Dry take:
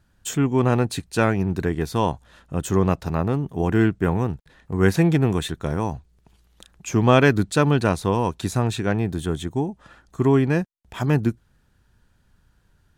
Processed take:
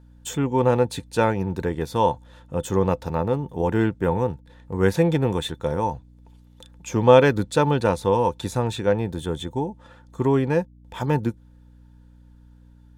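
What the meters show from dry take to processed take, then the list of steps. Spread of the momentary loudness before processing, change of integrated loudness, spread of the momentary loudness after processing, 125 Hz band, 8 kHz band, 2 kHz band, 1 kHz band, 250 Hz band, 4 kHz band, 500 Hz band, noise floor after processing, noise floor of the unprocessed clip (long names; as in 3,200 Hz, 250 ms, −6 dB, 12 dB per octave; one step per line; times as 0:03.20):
11 LU, −0.5 dB, 11 LU, −3.5 dB, −3.5 dB, −3.5 dB, +2.0 dB, −3.0 dB, −1.0 dB, +2.5 dB, −50 dBFS, −63 dBFS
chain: mains hum 60 Hz, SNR 24 dB
hollow resonant body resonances 510/890/3,500 Hz, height 14 dB, ringing for 70 ms
level −3.5 dB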